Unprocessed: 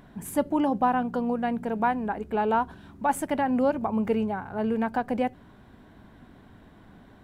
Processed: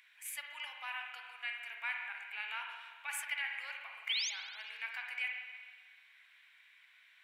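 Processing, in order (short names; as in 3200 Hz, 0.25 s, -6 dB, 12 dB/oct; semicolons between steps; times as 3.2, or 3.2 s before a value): painted sound rise, 4.09–4.3, 2900–6900 Hz -34 dBFS; ladder high-pass 2100 Hz, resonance 70%; spring tank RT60 1.6 s, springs 43/56 ms, chirp 25 ms, DRR 1.5 dB; gain +6.5 dB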